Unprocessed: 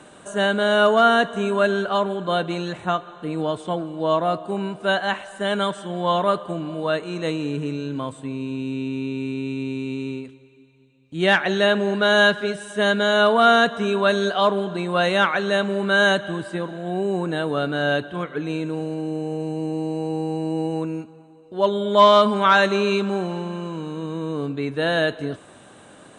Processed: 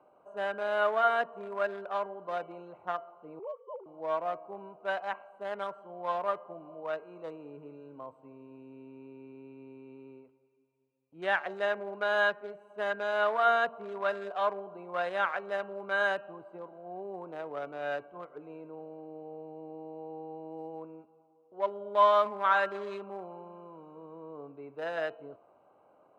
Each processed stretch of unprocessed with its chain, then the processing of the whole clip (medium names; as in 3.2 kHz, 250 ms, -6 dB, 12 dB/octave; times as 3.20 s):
3.39–3.86 s: formants replaced by sine waves + distance through air 300 m + static phaser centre 1.1 kHz, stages 8
whole clip: local Wiener filter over 25 samples; three-band isolator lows -20 dB, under 520 Hz, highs -14 dB, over 2.1 kHz; de-hum 228.8 Hz, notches 13; trim -7 dB